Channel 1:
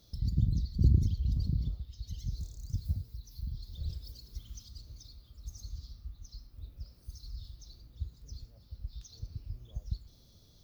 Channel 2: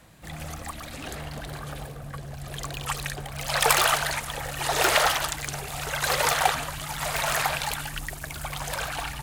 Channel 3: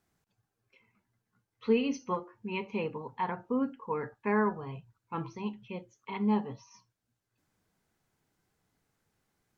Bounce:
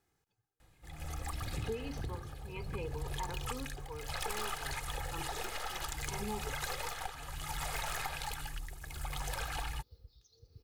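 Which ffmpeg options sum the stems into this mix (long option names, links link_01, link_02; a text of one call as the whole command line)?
ffmpeg -i stem1.wav -i stem2.wav -i stem3.wav -filter_complex "[0:a]agate=range=-33dB:threshold=-56dB:ratio=3:detection=peak,highpass=frequency=160:poles=1,equalizer=frequency=470:width=4.2:gain=13,adelay=1200,volume=-0.5dB[link_01];[1:a]aeval=exprs='(tanh(3.55*val(0)+0.55)-tanh(0.55))/3.55':channel_layout=same,lowshelf=frequency=72:gain=11,adelay=600,volume=0.5dB[link_02];[2:a]volume=-1.5dB[link_03];[link_01][link_02][link_03]amix=inputs=3:normalize=0,aecho=1:1:2.4:0.49,tremolo=f=0.63:d=0.8,acompressor=threshold=-35dB:ratio=6" out.wav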